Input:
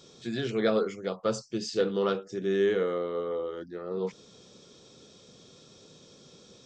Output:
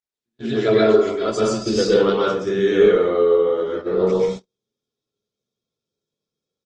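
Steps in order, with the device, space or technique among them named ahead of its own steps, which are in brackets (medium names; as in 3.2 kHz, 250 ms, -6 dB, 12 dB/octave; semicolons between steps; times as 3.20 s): 0.56–1.40 s: comb 3 ms, depth 84%; speakerphone in a meeting room (reverberation RT60 0.65 s, pre-delay 116 ms, DRR -5 dB; speakerphone echo 150 ms, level -25 dB; level rider gain up to 12 dB; gate -23 dBFS, range -47 dB; trim -2.5 dB; Opus 20 kbps 48 kHz)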